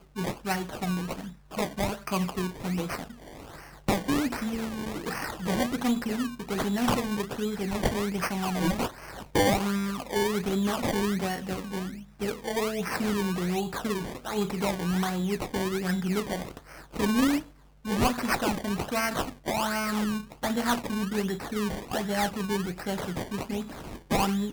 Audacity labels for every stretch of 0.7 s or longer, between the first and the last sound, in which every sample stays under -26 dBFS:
3.010000	3.890000	silence